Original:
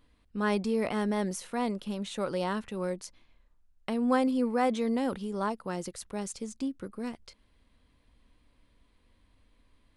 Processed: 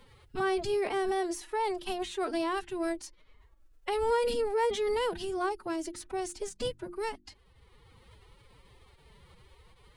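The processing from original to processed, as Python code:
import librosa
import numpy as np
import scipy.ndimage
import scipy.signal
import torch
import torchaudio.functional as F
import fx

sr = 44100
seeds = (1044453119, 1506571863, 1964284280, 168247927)

y = fx.pitch_keep_formants(x, sr, semitones=10.5)
y = fx.hum_notches(y, sr, base_hz=50, count=7)
y = fx.band_squash(y, sr, depth_pct=40)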